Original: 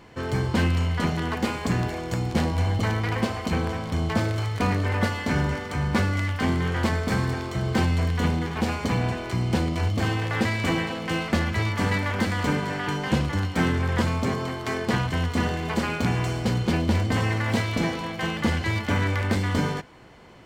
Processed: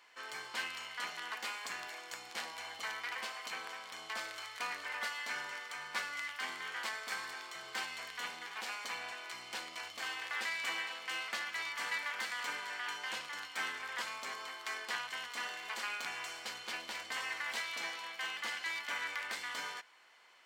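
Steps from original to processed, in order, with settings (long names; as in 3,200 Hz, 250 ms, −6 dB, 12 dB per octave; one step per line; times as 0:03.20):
high-pass filter 1,300 Hz 12 dB per octave
level −6.5 dB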